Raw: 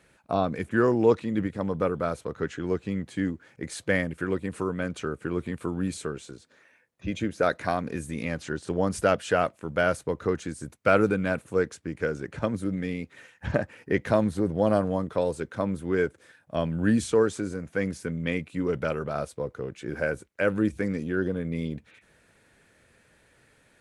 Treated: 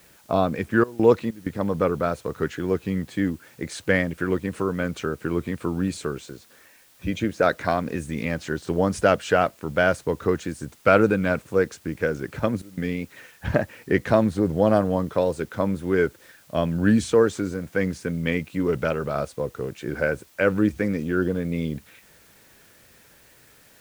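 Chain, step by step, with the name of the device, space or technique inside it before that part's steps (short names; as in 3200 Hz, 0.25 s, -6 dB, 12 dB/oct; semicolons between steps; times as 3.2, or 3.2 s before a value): worn cassette (LPF 7900 Hz; wow and flutter; level dips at 0.84/1.31/12.62, 0.152 s -21 dB; white noise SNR 32 dB); gain +4 dB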